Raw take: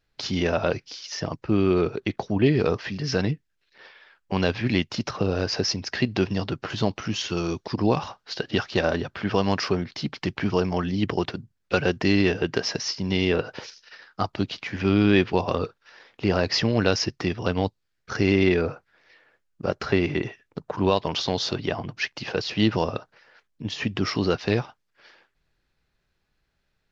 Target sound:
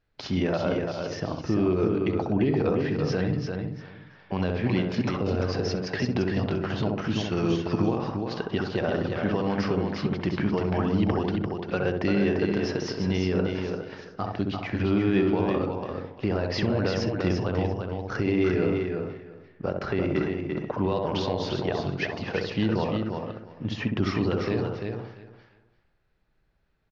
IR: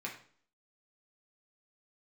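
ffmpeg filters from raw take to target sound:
-filter_complex "[0:a]lowpass=frequency=1900:poles=1,asplit=2[link_01][link_02];[link_02]adelay=65,lowpass=frequency=960:poles=1,volume=-3dB,asplit=2[link_03][link_04];[link_04]adelay=65,lowpass=frequency=960:poles=1,volume=0.44,asplit=2[link_05][link_06];[link_06]adelay=65,lowpass=frequency=960:poles=1,volume=0.44,asplit=2[link_07][link_08];[link_08]adelay=65,lowpass=frequency=960:poles=1,volume=0.44,asplit=2[link_09][link_10];[link_10]adelay=65,lowpass=frequency=960:poles=1,volume=0.44,asplit=2[link_11][link_12];[link_12]adelay=65,lowpass=frequency=960:poles=1,volume=0.44[link_13];[link_03][link_05][link_07][link_09][link_11][link_13]amix=inputs=6:normalize=0[link_14];[link_01][link_14]amix=inputs=2:normalize=0,alimiter=limit=-15dB:level=0:latency=1:release=193,asplit=2[link_15][link_16];[link_16]aecho=0:1:344|688|1032:0.562|0.0956|0.0163[link_17];[link_15][link_17]amix=inputs=2:normalize=0"

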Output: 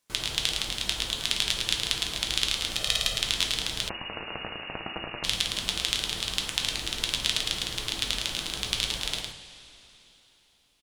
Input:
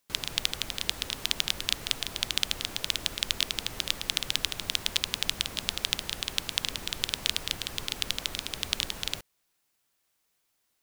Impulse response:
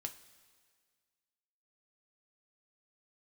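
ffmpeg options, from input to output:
-filter_complex "[0:a]asettb=1/sr,asplit=3[link_01][link_02][link_03];[link_01]atrim=end=2.714[link_04];[link_02]atrim=start=2.71:end=3.17,asetpts=PTS-STARTPTS,afade=type=in:duration=0.004:curve=qsin,afade=type=out:start_time=0.456:duration=0.004:curve=qsin,aecho=1:1:1.6:0.8,atrim=end_sample=20286[link_05];[link_03]atrim=start=3.166[link_06];[link_04][link_05]acrossfade=duration=0.004:curve1=hsin:curve2=qsin[link_07];[link_07][link_06]acrossfade=duration=0.004:curve1=qsin:curve2=hsin,aecho=1:1:109:0.562[link_08];[1:a]atrim=start_sample=2205,asetrate=22491,aresample=44100[link_09];[link_08][link_09]afir=irnorm=-1:irlink=0,asettb=1/sr,asplit=3[link_10][link_11][link_12];[link_10]atrim=end=3.894[link_13];[link_11]atrim=start=3.89:end=5.24,asetpts=PTS-STARTPTS,afade=type=in:duration=0.004:curve=qsin,afade=type=out:start_time=1.346:duration=0.004:curve=qsin,lowpass=frequency=2500:width_type=q:width=0.5098,lowpass=frequency=2500:width_type=q:width=0.6013,lowpass=frequency=2500:width_type=q:width=0.9,lowpass=frequency=2500:width_type=q:width=2.563,afreqshift=-2900[link_14];[link_12]atrim=start=5.236[link_15];[link_13][link_14]acrossfade=duration=0.004:curve1=hsin:curve2=qsin[link_16];[link_16][link_15]acrossfade=duration=0.004:curve1=qsin:curve2=hsin"

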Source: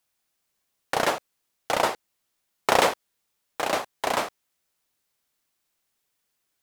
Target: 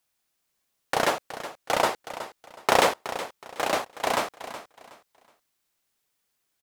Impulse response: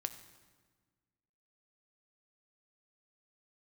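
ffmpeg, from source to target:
-af "aecho=1:1:370|740|1110:0.224|0.0604|0.0163"

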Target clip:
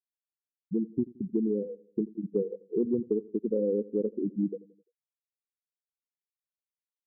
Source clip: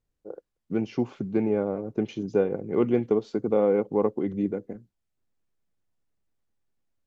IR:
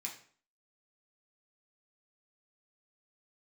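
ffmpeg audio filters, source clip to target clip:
-filter_complex "[0:a]afftfilt=real='re*gte(hypot(re,im),0.251)':imag='im*gte(hypot(re,im),0.251)':win_size=1024:overlap=0.75,equalizer=frequency=910:width_type=o:width=1.9:gain=-13,acompressor=threshold=-25dB:ratio=6,asplit=2[link_01][link_02];[link_02]adelay=86,lowpass=frequency=2000:poles=1,volume=-20.5dB,asplit=2[link_03][link_04];[link_04]adelay=86,lowpass=frequency=2000:poles=1,volume=0.48,asplit=2[link_05][link_06];[link_06]adelay=86,lowpass=frequency=2000:poles=1,volume=0.48,asplit=2[link_07][link_08];[link_08]adelay=86,lowpass=frequency=2000:poles=1,volume=0.48[link_09];[link_01][link_03][link_05][link_07][link_09]amix=inputs=5:normalize=0,volume=2.5dB"

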